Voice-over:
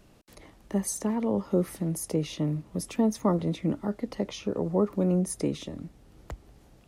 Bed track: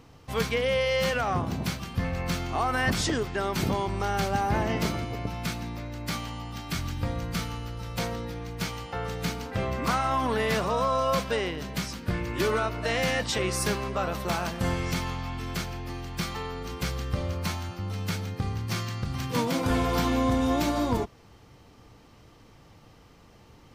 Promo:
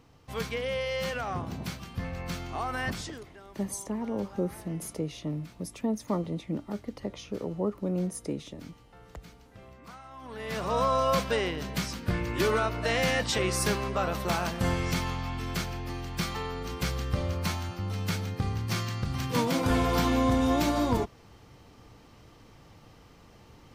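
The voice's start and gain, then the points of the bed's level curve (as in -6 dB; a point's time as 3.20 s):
2.85 s, -5.0 dB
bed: 2.86 s -6 dB
3.39 s -21.5 dB
10.13 s -21.5 dB
10.77 s 0 dB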